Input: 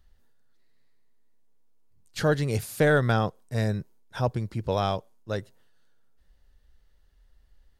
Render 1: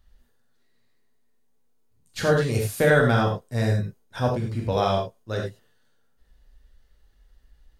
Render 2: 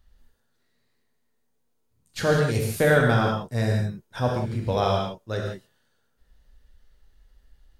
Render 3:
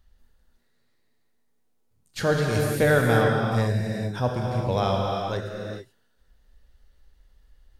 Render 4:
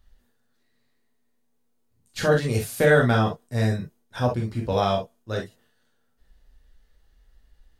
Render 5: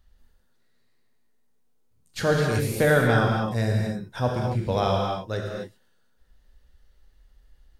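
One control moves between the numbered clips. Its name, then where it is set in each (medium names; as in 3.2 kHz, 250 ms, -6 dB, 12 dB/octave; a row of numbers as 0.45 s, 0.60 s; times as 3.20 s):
gated-style reverb, gate: 120 ms, 200 ms, 460 ms, 80 ms, 300 ms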